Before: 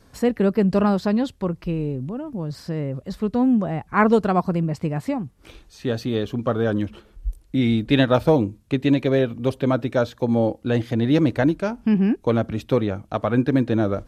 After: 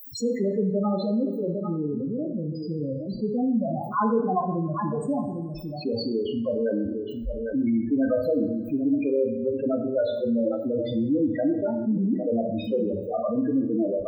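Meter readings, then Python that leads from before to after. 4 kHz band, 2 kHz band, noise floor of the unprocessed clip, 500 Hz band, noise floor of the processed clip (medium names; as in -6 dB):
-8.0 dB, -14.5 dB, -55 dBFS, -3.0 dB, -34 dBFS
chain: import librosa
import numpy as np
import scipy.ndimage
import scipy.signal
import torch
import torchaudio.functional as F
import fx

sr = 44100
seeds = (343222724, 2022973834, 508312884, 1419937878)

y = fx.tilt_eq(x, sr, slope=2.5)
y = fx.dmg_noise_colour(y, sr, seeds[0], colour='blue', level_db=-45.0)
y = y + 10.0 ** (-11.0 / 20.0) * np.pad(y, (int(805 * sr / 1000.0), 0))[:len(y)]
y = fx.spec_topn(y, sr, count=4)
y = fx.rev_double_slope(y, sr, seeds[1], early_s=0.68, late_s=2.2, knee_db=-27, drr_db=4.0)
y = fx.env_flatten(y, sr, amount_pct=50)
y = y * librosa.db_to_amplitude(-3.5)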